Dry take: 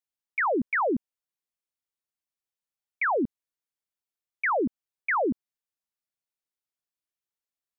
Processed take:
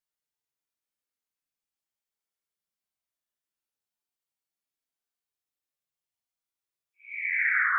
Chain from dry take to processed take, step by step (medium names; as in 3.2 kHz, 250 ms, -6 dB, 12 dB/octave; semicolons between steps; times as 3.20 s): Paulstretch 8.2×, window 0.10 s, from 3.54 s